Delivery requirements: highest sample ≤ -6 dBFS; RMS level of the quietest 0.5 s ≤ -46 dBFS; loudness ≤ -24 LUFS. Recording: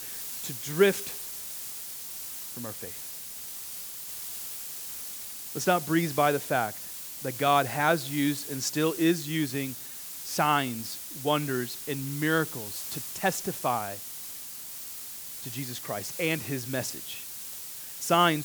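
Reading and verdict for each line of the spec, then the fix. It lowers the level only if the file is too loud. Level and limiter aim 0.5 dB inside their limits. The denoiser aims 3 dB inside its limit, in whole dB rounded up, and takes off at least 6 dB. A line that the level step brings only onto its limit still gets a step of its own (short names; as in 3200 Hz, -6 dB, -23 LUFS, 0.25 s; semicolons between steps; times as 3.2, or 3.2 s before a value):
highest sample -8.5 dBFS: OK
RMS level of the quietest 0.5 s -41 dBFS: fail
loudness -30.0 LUFS: OK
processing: denoiser 8 dB, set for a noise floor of -41 dBFS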